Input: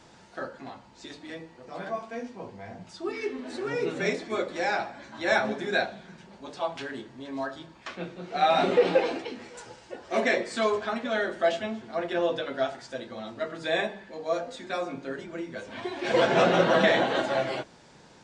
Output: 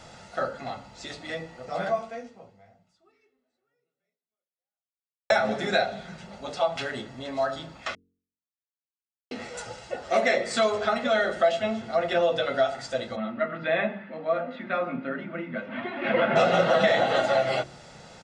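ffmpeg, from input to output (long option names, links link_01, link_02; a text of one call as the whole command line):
ffmpeg -i in.wav -filter_complex "[0:a]asplit=3[link_01][link_02][link_03];[link_01]afade=type=out:start_time=13.15:duration=0.02[link_04];[link_02]highpass=frequency=150:width=0.5412,highpass=frequency=150:width=1.3066,equalizer=frequency=240:width_type=q:width=4:gain=9,equalizer=frequency=450:width_type=q:width=4:gain=-9,equalizer=frequency=750:width_type=q:width=4:gain=-8,lowpass=frequency=2600:width=0.5412,lowpass=frequency=2600:width=1.3066,afade=type=in:start_time=13.15:duration=0.02,afade=type=out:start_time=16.35:duration=0.02[link_05];[link_03]afade=type=in:start_time=16.35:duration=0.02[link_06];[link_04][link_05][link_06]amix=inputs=3:normalize=0,asplit=4[link_07][link_08][link_09][link_10];[link_07]atrim=end=5.3,asetpts=PTS-STARTPTS,afade=type=out:start_time=1.9:duration=3.4:curve=exp[link_11];[link_08]atrim=start=5.3:end=7.95,asetpts=PTS-STARTPTS,afade=type=in:duration=0.004:curve=hsin,afade=type=out:start_time=2.646:duration=0.004:curve=hsin[link_12];[link_09]atrim=start=7.95:end=9.31,asetpts=PTS-STARTPTS,volume=0[link_13];[link_10]atrim=start=9.31,asetpts=PTS-STARTPTS,afade=type=in:duration=0.004:curve=hsin[link_14];[link_11][link_12][link_13][link_14]concat=n=4:v=0:a=1,aecho=1:1:1.5:0.54,bandreject=frequency=45.65:width_type=h:width=4,bandreject=frequency=91.3:width_type=h:width=4,bandreject=frequency=136.95:width_type=h:width=4,bandreject=frequency=182.6:width_type=h:width=4,bandreject=frequency=228.25:width_type=h:width=4,bandreject=frequency=273.9:width_type=h:width=4,bandreject=frequency=319.55:width_type=h:width=4,bandreject=frequency=365.2:width_type=h:width=4,bandreject=frequency=410.85:width_type=h:width=4,bandreject=frequency=456.5:width_type=h:width=4,acompressor=threshold=-27dB:ratio=2.5,volume=6dB" out.wav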